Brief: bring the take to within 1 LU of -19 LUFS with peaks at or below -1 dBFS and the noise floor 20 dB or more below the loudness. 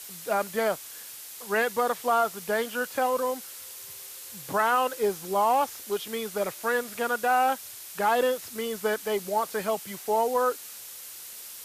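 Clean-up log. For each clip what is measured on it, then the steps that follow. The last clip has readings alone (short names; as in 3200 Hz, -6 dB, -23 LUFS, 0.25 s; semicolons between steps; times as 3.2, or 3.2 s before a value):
noise floor -43 dBFS; noise floor target -48 dBFS; loudness -27.5 LUFS; peak -13.5 dBFS; loudness target -19.0 LUFS
-> denoiser 6 dB, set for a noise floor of -43 dBFS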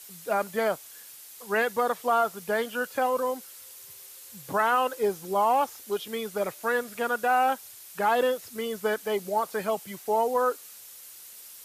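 noise floor -47 dBFS; noise floor target -48 dBFS
-> denoiser 6 dB, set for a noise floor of -47 dBFS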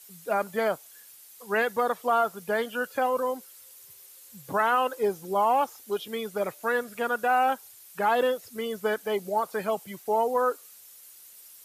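noise floor -51 dBFS; loudness -27.5 LUFS; peak -14.0 dBFS; loudness target -19.0 LUFS
-> gain +8.5 dB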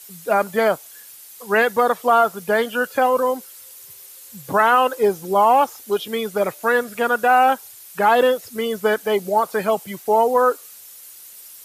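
loudness -19.0 LUFS; peak -5.5 dBFS; noise floor -42 dBFS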